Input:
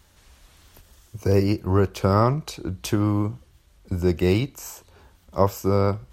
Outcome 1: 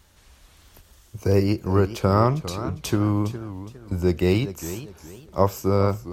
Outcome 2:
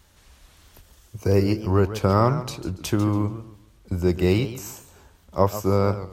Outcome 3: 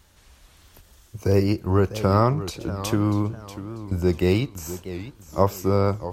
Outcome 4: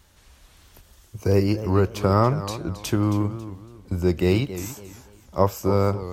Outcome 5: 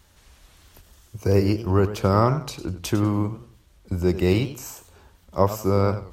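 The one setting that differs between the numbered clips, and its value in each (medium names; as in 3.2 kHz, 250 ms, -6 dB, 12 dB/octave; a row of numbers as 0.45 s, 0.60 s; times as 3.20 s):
modulated delay, time: 408 ms, 142 ms, 644 ms, 276 ms, 96 ms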